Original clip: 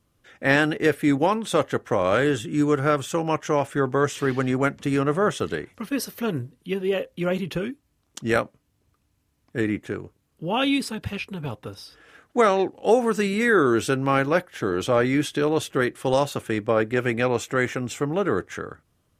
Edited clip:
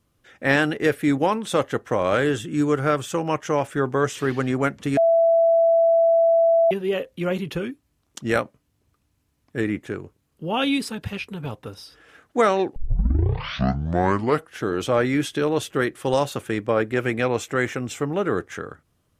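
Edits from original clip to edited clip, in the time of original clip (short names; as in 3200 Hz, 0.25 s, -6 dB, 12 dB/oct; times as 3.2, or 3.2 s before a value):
4.97–6.71 bleep 665 Hz -13.5 dBFS
12.76 tape start 1.88 s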